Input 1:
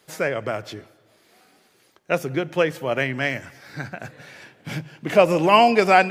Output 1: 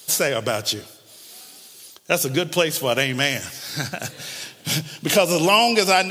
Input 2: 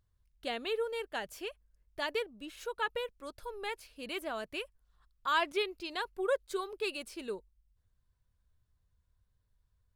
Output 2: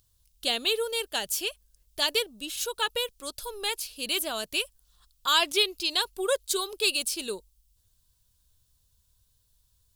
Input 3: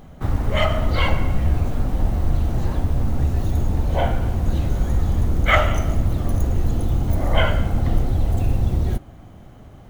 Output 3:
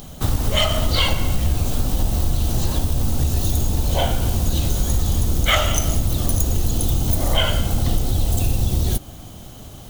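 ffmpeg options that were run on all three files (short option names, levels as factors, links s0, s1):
-af "aexciter=amount=5.7:drive=4.1:freq=2900,acompressor=threshold=0.1:ratio=2.5,volume=1.58"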